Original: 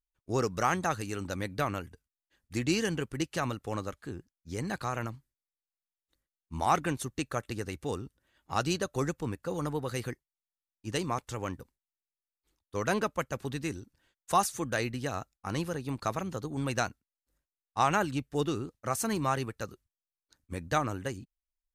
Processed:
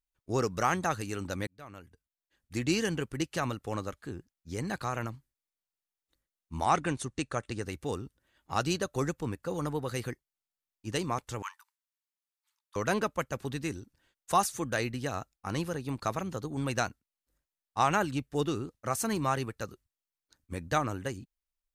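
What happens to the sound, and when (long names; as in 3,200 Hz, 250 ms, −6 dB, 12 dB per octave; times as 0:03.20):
0:01.47–0:02.70: fade in
0:06.64–0:07.63: Butterworth low-pass 10,000 Hz 48 dB per octave
0:11.42–0:12.76: linear-phase brick-wall high-pass 840 Hz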